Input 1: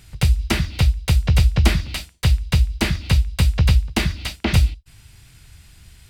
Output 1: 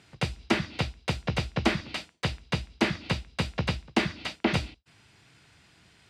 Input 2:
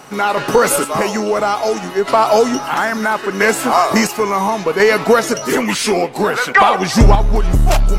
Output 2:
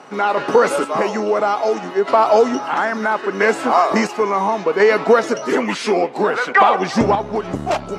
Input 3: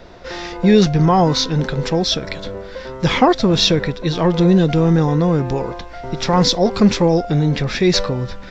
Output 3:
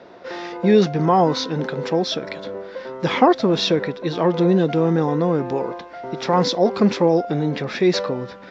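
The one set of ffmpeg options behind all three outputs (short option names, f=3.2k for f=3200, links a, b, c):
-af "highpass=240,lowpass=6.6k,highshelf=f=2.2k:g=-8.5"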